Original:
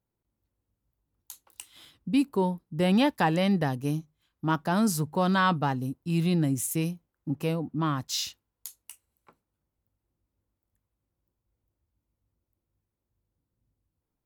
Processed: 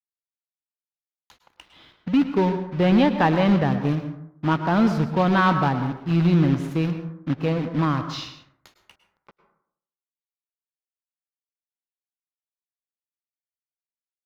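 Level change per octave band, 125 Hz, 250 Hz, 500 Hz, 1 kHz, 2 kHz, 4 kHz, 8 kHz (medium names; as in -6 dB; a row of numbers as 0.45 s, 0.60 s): +6.5 dB, +6.0 dB, +6.0 dB, +5.5 dB, +4.5 dB, +0.5 dB, under -10 dB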